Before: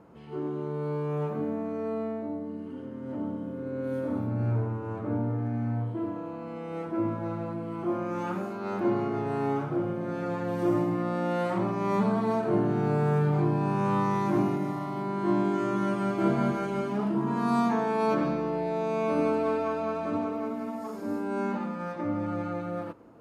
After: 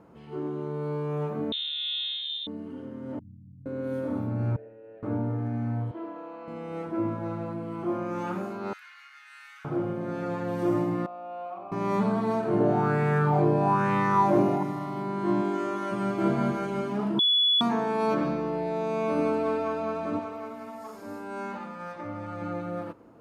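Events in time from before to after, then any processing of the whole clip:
1.52–2.47 s: frequency inversion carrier 3.9 kHz
3.19–3.66 s: inverse Chebyshev band-stop 720–7400 Hz, stop band 80 dB
4.56–5.03 s: vowel filter e
5.91–6.48 s: band-pass 440–4700 Hz
8.73–9.65 s: steep high-pass 1.6 kHz
11.06–11.72 s: vowel filter a
12.60–14.63 s: sweeping bell 1.1 Hz 510–2100 Hz +13 dB
15.41–15.91 s: high-pass 190 Hz -> 410 Hz
17.19–17.61 s: bleep 3.41 kHz -19 dBFS
20.19–22.42 s: peaking EQ 250 Hz -9.5 dB 2 oct

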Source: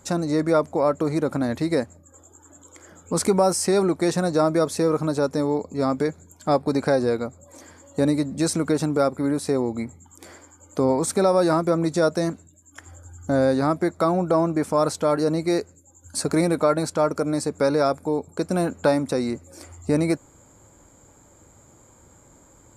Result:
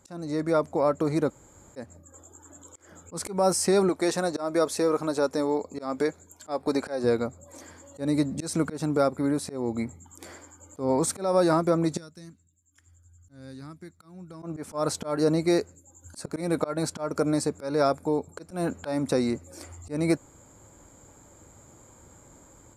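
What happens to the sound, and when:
1.30–1.76 s: room tone
3.89–7.04 s: peaking EQ 130 Hz -12 dB 1.5 oct
11.97–14.43 s: amplifier tone stack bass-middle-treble 6-0-2
whole clip: slow attack 201 ms; level rider gain up to 8 dB; trim -8 dB

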